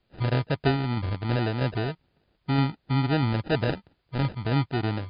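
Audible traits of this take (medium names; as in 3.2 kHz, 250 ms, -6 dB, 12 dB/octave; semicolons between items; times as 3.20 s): aliases and images of a low sample rate 1.1 kHz, jitter 0%; tremolo saw down 3.1 Hz, depth 35%; a quantiser's noise floor 12-bit, dither triangular; MP3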